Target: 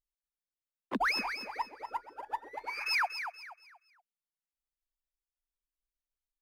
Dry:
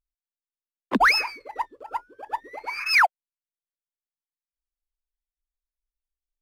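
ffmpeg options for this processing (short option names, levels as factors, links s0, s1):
-af "alimiter=limit=0.15:level=0:latency=1:release=352,aecho=1:1:238|476|714|952:0.355|0.114|0.0363|0.0116,volume=0.447"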